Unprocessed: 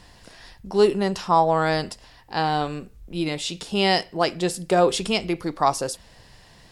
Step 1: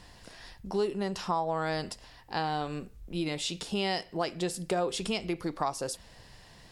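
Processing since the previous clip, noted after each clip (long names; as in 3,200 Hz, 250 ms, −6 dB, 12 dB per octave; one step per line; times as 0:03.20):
downward compressor 3 to 1, threshold −26 dBFS, peak gain reduction 10.5 dB
level −3 dB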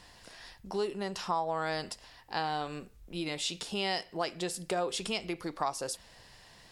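low-shelf EQ 400 Hz −7 dB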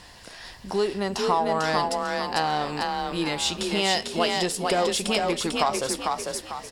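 harmonic generator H 8 −32 dB, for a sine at −16.5 dBFS
echo with shifted repeats 447 ms, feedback 39%, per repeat +32 Hz, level −3 dB
level +8 dB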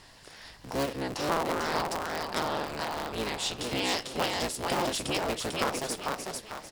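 sub-harmonics by changed cycles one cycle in 3, inverted
level −6 dB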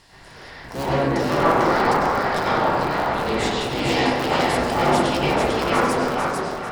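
convolution reverb RT60 1.6 s, pre-delay 88 ms, DRR −10.5 dB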